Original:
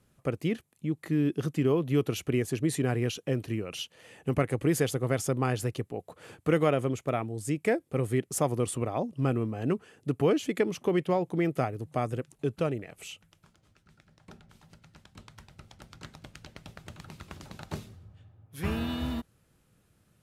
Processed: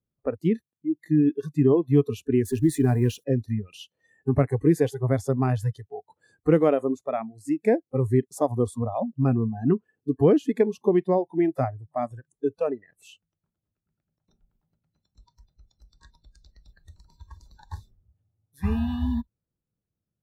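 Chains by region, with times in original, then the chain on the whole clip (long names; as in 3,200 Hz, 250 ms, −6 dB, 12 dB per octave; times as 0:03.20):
0:02.45–0:03.24: mu-law and A-law mismatch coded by mu + high-shelf EQ 7,900 Hz +11.5 dB
whole clip: noise reduction from a noise print of the clip's start 27 dB; tilt shelving filter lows +8.5 dB, about 1,200 Hz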